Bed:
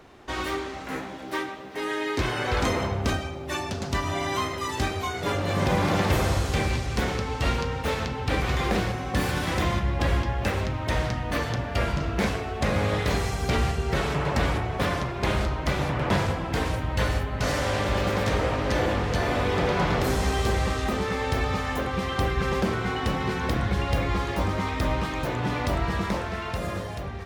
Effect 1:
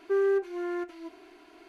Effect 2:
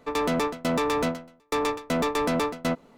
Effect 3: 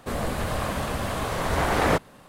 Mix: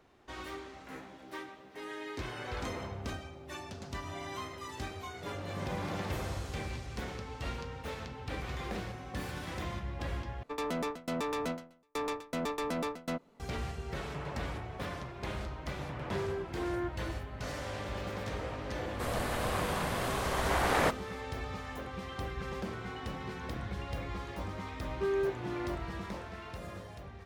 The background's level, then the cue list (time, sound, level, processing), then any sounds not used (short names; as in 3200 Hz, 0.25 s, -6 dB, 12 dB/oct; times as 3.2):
bed -13.5 dB
10.43 replace with 2 -9.5 dB
16.04 add 1 -2 dB + spectral noise reduction 11 dB
18.93 add 3 -4.5 dB + low shelf 370 Hz -6 dB
24.91 add 1 -6.5 dB